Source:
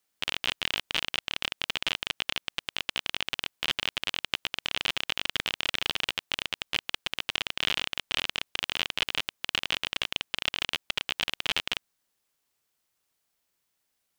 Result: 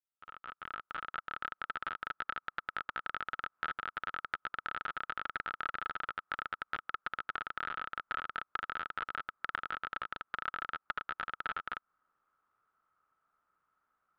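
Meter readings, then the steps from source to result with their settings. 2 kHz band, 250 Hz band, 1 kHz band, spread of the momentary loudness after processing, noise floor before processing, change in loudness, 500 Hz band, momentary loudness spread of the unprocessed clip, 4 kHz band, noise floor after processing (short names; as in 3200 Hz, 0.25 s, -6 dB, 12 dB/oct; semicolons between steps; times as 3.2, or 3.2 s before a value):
-7.0 dB, -11.0 dB, +3.0 dB, 3 LU, -78 dBFS, -9.5 dB, -9.5 dB, 3 LU, -23.0 dB, under -85 dBFS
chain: opening faded in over 3.21 s; compressor 10:1, threshold -32 dBFS, peak gain reduction 12 dB; synth low-pass 1300 Hz, resonance Q 12; Doppler distortion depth 0.34 ms; gain -2 dB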